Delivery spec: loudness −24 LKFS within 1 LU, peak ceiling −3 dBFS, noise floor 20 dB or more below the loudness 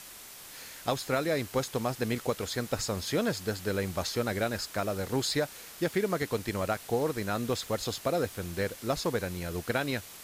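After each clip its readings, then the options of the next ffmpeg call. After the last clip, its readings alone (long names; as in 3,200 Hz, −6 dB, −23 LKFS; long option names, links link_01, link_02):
background noise floor −48 dBFS; target noise floor −52 dBFS; integrated loudness −31.5 LKFS; sample peak −15.5 dBFS; target loudness −24.0 LKFS
→ -af "afftdn=noise_reduction=6:noise_floor=-48"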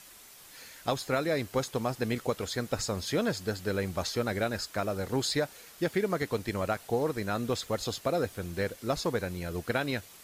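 background noise floor −52 dBFS; integrated loudness −32.0 LKFS; sample peak −15.5 dBFS; target loudness −24.0 LKFS
→ -af "volume=8dB"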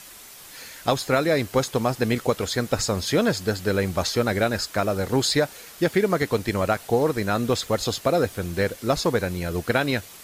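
integrated loudness −24.0 LKFS; sample peak −7.5 dBFS; background noise floor −44 dBFS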